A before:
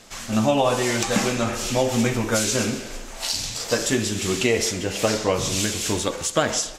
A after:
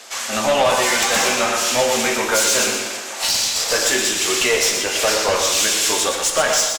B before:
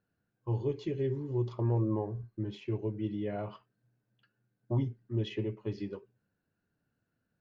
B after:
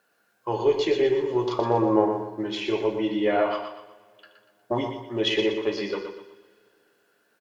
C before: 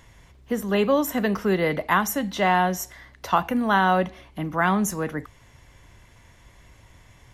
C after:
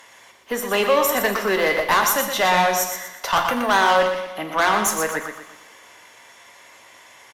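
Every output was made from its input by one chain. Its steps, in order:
high-pass 580 Hz 12 dB/octave; valve stage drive 23 dB, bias 0.3; on a send: feedback delay 120 ms, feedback 38%, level -7 dB; on the sum: two-slope reverb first 0.56 s, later 3 s, from -22 dB, DRR 7.5 dB; peak normalisation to -6 dBFS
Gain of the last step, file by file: +10.0 dB, +19.0 dB, +9.5 dB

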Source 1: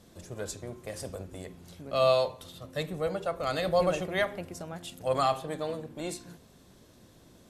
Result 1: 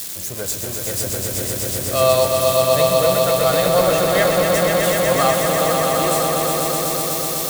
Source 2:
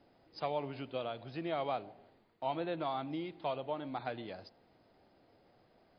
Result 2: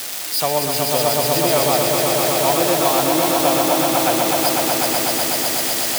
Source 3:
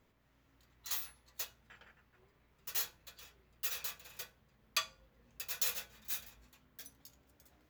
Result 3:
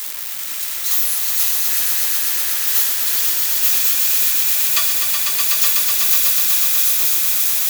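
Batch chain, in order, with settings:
zero-crossing glitches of -27.5 dBFS; echo with a slow build-up 124 ms, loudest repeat 5, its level -5 dB; peak normalisation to -3 dBFS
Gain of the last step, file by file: +7.5 dB, +15.0 dB, +11.0 dB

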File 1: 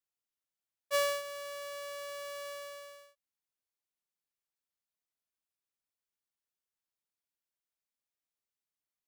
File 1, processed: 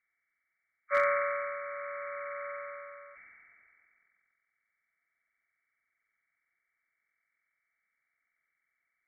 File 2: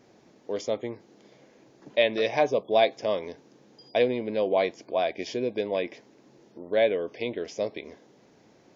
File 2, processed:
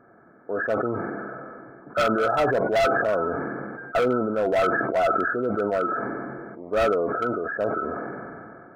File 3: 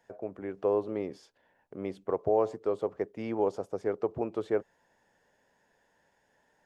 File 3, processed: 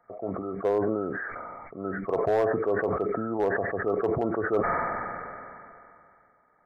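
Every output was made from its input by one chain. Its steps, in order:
knee-point frequency compression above 1.1 kHz 4:1; small resonant body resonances 690/1300 Hz, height 9 dB, ringing for 60 ms; hard clipper -19.5 dBFS; decay stretcher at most 23 dB/s; trim +1.5 dB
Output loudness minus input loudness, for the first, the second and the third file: +4.0 LU, +3.0 LU, +4.0 LU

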